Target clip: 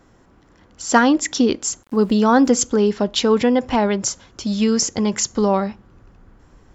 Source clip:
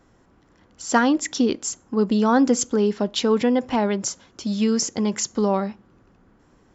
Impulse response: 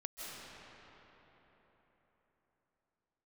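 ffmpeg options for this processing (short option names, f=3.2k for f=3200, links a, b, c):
-filter_complex "[0:a]asubboost=boost=3:cutoff=110,asettb=1/sr,asplit=3[a][b][c];[a]atrim=end=1.834[d];[b]atrim=start=1.83:end=2.49,asetpts=PTS-STARTPTS,afade=t=in:d=0.004:c=qsin,afade=t=out:st=0.656:d=0.004:c=qsin,aeval=exprs='val(0)*gte(abs(val(0)),0.00422)':c=same[e];[c]atrim=start=2.486[f];[d][e]acrossfade=d=0.004:c1=hsin:c2=qsin[g];[g][f]acrossfade=d=0.004:c1=qsin:c2=hsin,volume=4.5dB"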